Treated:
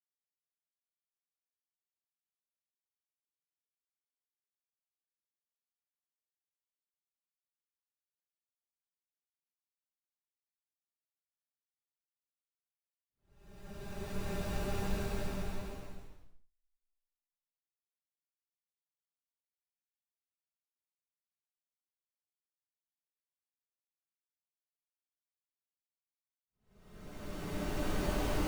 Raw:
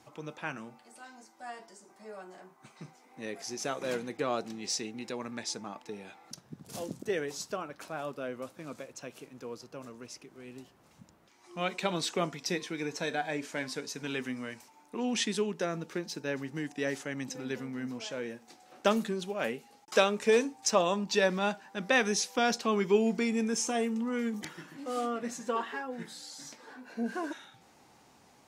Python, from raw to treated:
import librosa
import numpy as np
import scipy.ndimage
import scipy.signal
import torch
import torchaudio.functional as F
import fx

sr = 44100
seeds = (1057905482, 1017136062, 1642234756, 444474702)

y = fx.cycle_switch(x, sr, every=2, mode='muted')
y = fx.schmitt(y, sr, flips_db=-20.0)
y = fx.paulstretch(y, sr, seeds[0], factor=12.0, window_s=0.25, from_s=17.64)
y = F.gain(torch.from_numpy(y), 7.0).numpy()